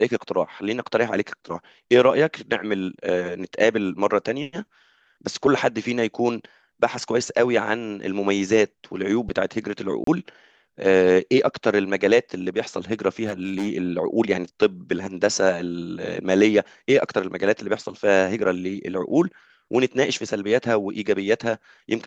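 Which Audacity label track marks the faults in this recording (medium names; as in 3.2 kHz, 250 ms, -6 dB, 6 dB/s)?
10.040000	10.070000	dropout 33 ms
13.250000	13.680000	clipped -20.5 dBFS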